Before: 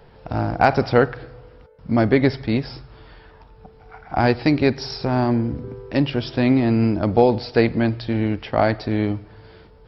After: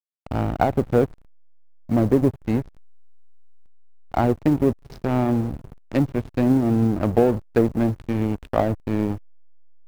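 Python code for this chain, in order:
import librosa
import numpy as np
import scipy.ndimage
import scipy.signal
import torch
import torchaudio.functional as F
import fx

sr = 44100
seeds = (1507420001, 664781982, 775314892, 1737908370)

y = fx.env_lowpass_down(x, sr, base_hz=560.0, full_db=-13.0)
y = fx.quant_float(y, sr, bits=4)
y = fx.backlash(y, sr, play_db=-21.5)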